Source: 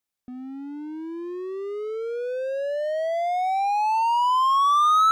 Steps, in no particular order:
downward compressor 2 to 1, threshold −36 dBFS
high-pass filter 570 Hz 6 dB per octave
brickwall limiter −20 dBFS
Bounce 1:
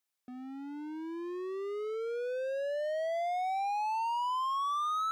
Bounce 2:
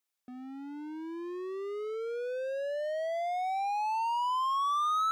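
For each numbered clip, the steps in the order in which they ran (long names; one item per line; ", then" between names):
brickwall limiter, then high-pass filter, then downward compressor
high-pass filter, then downward compressor, then brickwall limiter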